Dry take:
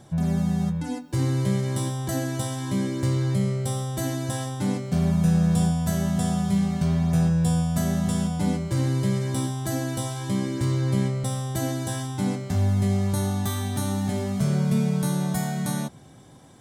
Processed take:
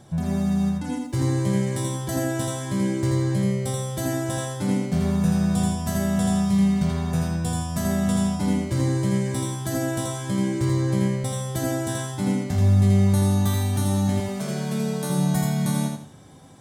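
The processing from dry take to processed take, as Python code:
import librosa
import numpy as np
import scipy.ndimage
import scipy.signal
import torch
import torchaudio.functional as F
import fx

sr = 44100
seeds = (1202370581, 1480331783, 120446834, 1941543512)

p1 = fx.highpass(x, sr, hz=290.0, slope=12, at=(14.2, 15.1))
y = p1 + fx.echo_feedback(p1, sr, ms=82, feedback_pct=31, wet_db=-3.5, dry=0)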